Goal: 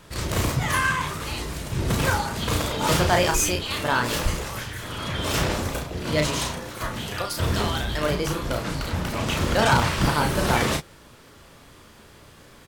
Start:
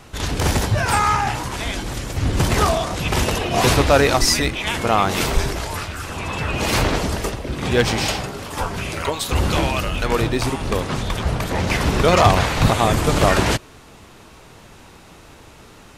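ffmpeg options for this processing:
-filter_complex "[0:a]bandreject=f=610:w=12,asplit=2[s0][s1];[s1]aecho=0:1:42|59:0.531|0.188[s2];[s0][s2]amix=inputs=2:normalize=0,asetrate=55566,aresample=44100,volume=0.501"

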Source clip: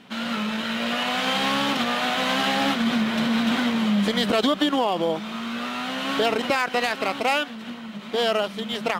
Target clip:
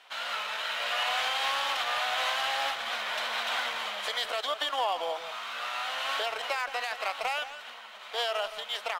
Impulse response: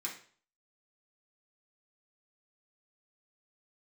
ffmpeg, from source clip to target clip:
-filter_complex "[0:a]highpass=f=630:w=0.5412,highpass=f=630:w=1.3066,alimiter=limit=0.158:level=0:latency=1:release=312,asplit=2[s0][s1];[s1]adelay=170,highpass=300,lowpass=3400,asoftclip=type=hard:threshold=0.0531,volume=0.316[s2];[s0][s2]amix=inputs=2:normalize=0,volume=0.708"

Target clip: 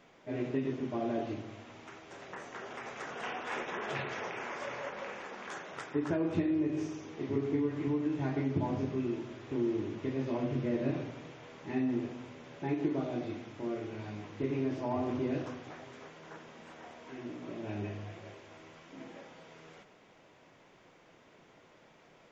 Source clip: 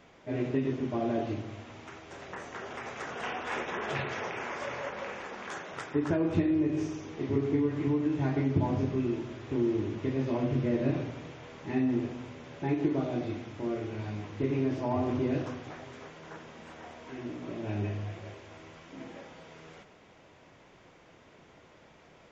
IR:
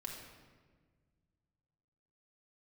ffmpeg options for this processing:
-af "equalizer=f=64:w=1.4:g=-13,volume=0.708"

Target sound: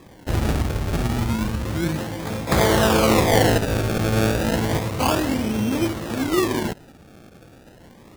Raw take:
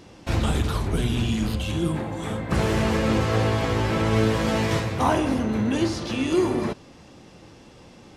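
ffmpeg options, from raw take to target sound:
-filter_complex "[0:a]asettb=1/sr,asplit=3[s0][s1][s2];[s0]atrim=end=2.474[s3];[s1]atrim=start=2.47:end=3.58,asetpts=PTS-STARTPTS,afade=t=in:d=0.004:c=qsin,afade=t=out:st=1.106:d=0.004:c=qsin,equalizer=f=760:t=o:w=2:g=9[s4];[s2]atrim=start=3.576[s5];[s3][s4]acrossfade=d=0.004:c1=hsin:c2=qsin[s6];[s6][s5]acrossfade=d=0.004:c1=qsin:c2=hsin,acrusher=samples=30:mix=1:aa=0.000001:lfo=1:lforange=30:lforate=0.31,volume=1.12"

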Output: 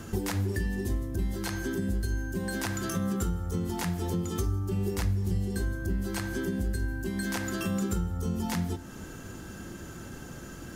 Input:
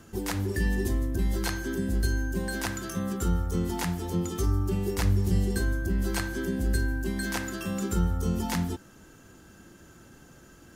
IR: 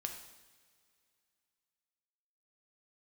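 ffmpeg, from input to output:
-filter_complex "[0:a]acompressor=threshold=0.0126:ratio=6,asplit=2[s0][s1];[1:a]atrim=start_sample=2205,lowshelf=f=390:g=7[s2];[s1][s2]afir=irnorm=-1:irlink=0,volume=0.501[s3];[s0][s3]amix=inputs=2:normalize=0,volume=1.88"

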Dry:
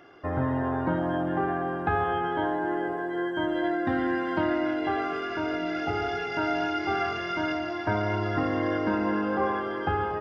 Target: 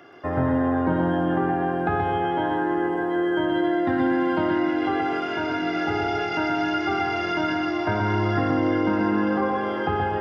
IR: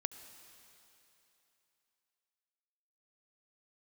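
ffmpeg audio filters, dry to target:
-filter_complex "[0:a]asplit=2[s0][s1];[1:a]atrim=start_sample=2205,asetrate=26901,aresample=44100,adelay=126[s2];[s1][s2]afir=irnorm=-1:irlink=0,volume=0.562[s3];[s0][s3]amix=inputs=2:normalize=0,acrossover=split=250[s4][s5];[s5]acompressor=threshold=0.0562:ratio=6[s6];[s4][s6]amix=inputs=2:normalize=0,highpass=91,volume=1.58"

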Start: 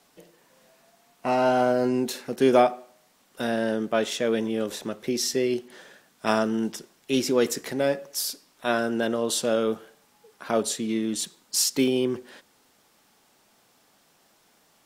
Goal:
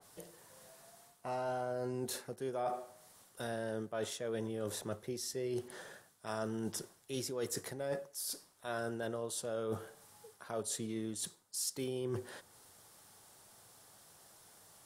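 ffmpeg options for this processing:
-af "equalizer=f=100:t=o:w=0.67:g=11,equalizer=f=250:t=o:w=0.67:g=-8,equalizer=f=2500:t=o:w=0.67:g=-6,equalizer=f=10000:t=o:w=0.67:g=9,areverse,acompressor=threshold=0.0178:ratio=10,areverse,adynamicequalizer=threshold=0.00126:dfrequency=2100:dqfactor=0.7:tfrequency=2100:tqfactor=0.7:attack=5:release=100:ratio=0.375:range=2:mode=cutabove:tftype=highshelf"

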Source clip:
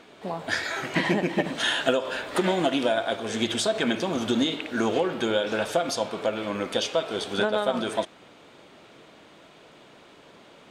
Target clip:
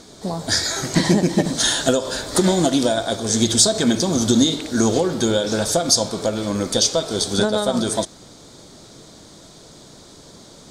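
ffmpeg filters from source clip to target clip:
-af "aexciter=amount=12.2:drive=9.3:freq=4300,aemphasis=mode=reproduction:type=riaa,volume=1.26"

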